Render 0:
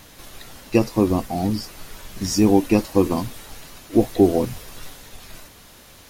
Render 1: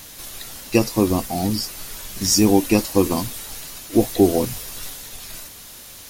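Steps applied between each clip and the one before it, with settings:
high-shelf EQ 3,600 Hz +11.5 dB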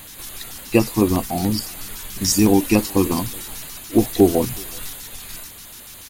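auto-filter notch square 6.9 Hz 570–5,500 Hz
slap from a distant wall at 64 metres, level −27 dB
level +1.5 dB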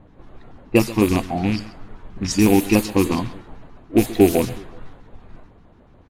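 loose part that buzzes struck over −19 dBFS, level −18 dBFS
low-pass that shuts in the quiet parts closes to 570 Hz, open at −11 dBFS
single-tap delay 131 ms −17.5 dB

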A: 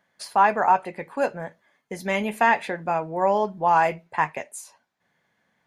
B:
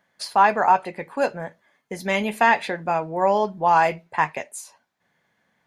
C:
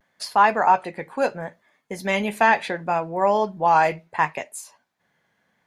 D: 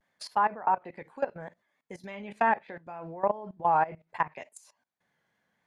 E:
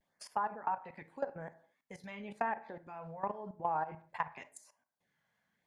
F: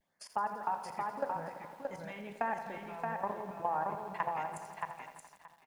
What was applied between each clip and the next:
dynamic equaliser 4,300 Hz, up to +6 dB, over −46 dBFS, Q 1.5; level +1.5 dB
pitch vibrato 0.71 Hz 47 cents
treble cut that deepens with the level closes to 1,500 Hz, closed at −16 dBFS; output level in coarse steps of 18 dB; pitch vibrato 3.4 Hz 38 cents; level −4.5 dB
auto-filter notch sine 0.89 Hz 310–4,200 Hz; downward compressor, threshold −27 dBFS, peak gain reduction 7.5 dB; on a send at −15 dB: convolution reverb, pre-delay 23 ms; on the sum: level −3.5 dB
repeating echo 625 ms, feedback 15%, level −3.5 dB; feedback echo at a low word length 84 ms, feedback 80%, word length 10 bits, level −11 dB

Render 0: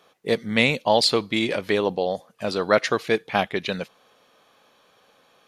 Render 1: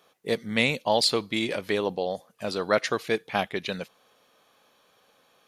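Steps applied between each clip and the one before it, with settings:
high-shelf EQ 8,000 Hz +7.5 dB
level −4.5 dB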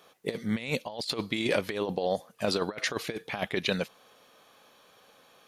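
compressor whose output falls as the input rises −29 dBFS, ratio −0.5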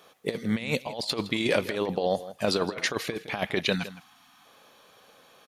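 gain on a spectral selection 0:03.75–0:04.45, 320–670 Hz −23 dB
slap from a distant wall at 28 metres, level −15 dB
level +2.5 dB

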